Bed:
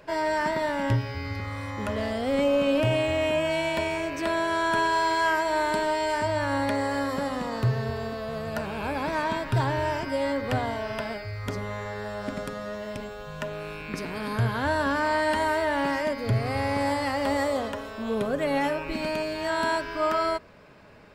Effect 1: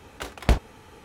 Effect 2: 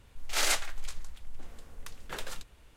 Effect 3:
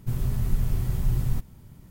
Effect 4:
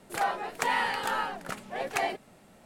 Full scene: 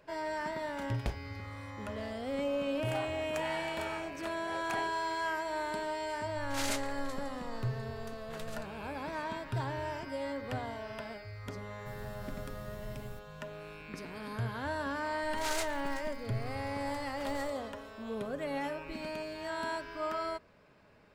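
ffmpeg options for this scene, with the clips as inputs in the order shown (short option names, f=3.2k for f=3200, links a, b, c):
-filter_complex "[2:a]asplit=2[a][b];[0:a]volume=-10.5dB[c];[3:a]lowshelf=f=130:g=-8[d];[b]acrusher=bits=6:mode=log:mix=0:aa=0.000001[e];[1:a]atrim=end=1.04,asetpts=PTS-STARTPTS,volume=-16dB,afade=t=in:d=0.004:c=hsin,afade=t=out:st=1.036:d=0.004:c=hsin,adelay=570[f];[4:a]atrim=end=2.65,asetpts=PTS-STARTPTS,volume=-12.5dB,afade=t=in:d=0.004:c=hsin,afade=t=out:st=2.646:d=0.004:c=hsin,adelay=2740[g];[a]atrim=end=2.76,asetpts=PTS-STARTPTS,volume=-8.5dB,afade=t=in:d=0.004:c=hsin,afade=t=out:st=2.756:d=0.004:c=hsin,adelay=6210[h];[d]atrim=end=1.9,asetpts=PTS-STARTPTS,volume=-14.5dB,afade=t=in:d=0.004:c=hsin,afade=t=out:st=1.896:d=0.004:c=hsin,adelay=11790[i];[e]atrim=end=2.76,asetpts=PTS-STARTPTS,volume=-9.5dB,afade=t=in:d=0.004:c=hsin,afade=t=out:st=2.756:d=0.004:c=hsin,adelay=665028S[j];[c][f][g][h][i][j]amix=inputs=6:normalize=0"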